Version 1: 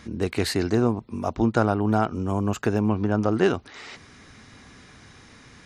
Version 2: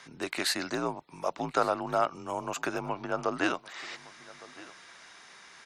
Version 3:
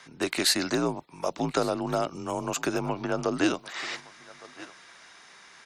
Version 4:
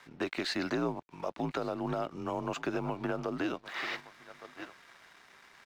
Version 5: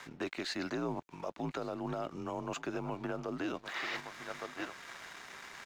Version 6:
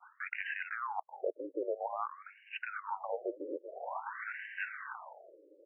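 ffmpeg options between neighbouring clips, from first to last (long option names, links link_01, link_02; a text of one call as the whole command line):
ffmpeg -i in.wav -af "highpass=690,afreqshift=-71,aecho=1:1:1162:0.0944" out.wav
ffmpeg -i in.wav -filter_complex "[0:a]agate=range=-7dB:threshold=-45dB:ratio=16:detection=peak,acrossover=split=480|3200[link_01][link_02][link_03];[link_02]acompressor=threshold=-39dB:ratio=6[link_04];[link_01][link_04][link_03]amix=inputs=3:normalize=0,volume=7.5dB" out.wav
ffmpeg -i in.wav -af "lowpass=3300,alimiter=limit=-23dB:level=0:latency=1:release=255,aeval=exprs='sgn(val(0))*max(abs(val(0))-0.00126,0)':channel_layout=same" out.wav
ffmpeg -i in.wav -af "equalizer=frequency=6800:width_type=o:width=0.3:gain=5,areverse,acompressor=threshold=-41dB:ratio=6,areverse,alimiter=level_in=12dB:limit=-24dB:level=0:latency=1:release=274,volume=-12dB,volume=8.5dB" out.wav
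ffmpeg -i in.wav -af "adynamicequalizer=threshold=0.00355:dfrequency=1100:dqfactor=0.72:tfrequency=1100:tqfactor=0.72:attack=5:release=100:ratio=0.375:range=2.5:mode=boostabove:tftype=bell,highpass=frequency=400:width_type=q:width=0.5412,highpass=frequency=400:width_type=q:width=1.307,lowpass=frequency=3100:width_type=q:width=0.5176,lowpass=frequency=3100:width_type=q:width=0.7071,lowpass=frequency=3100:width_type=q:width=1.932,afreqshift=-88,afftfilt=real='re*between(b*sr/1024,400*pow(2200/400,0.5+0.5*sin(2*PI*0.5*pts/sr))/1.41,400*pow(2200/400,0.5+0.5*sin(2*PI*0.5*pts/sr))*1.41)':imag='im*between(b*sr/1024,400*pow(2200/400,0.5+0.5*sin(2*PI*0.5*pts/sr))/1.41,400*pow(2200/400,0.5+0.5*sin(2*PI*0.5*pts/sr))*1.41)':win_size=1024:overlap=0.75,volume=4.5dB" out.wav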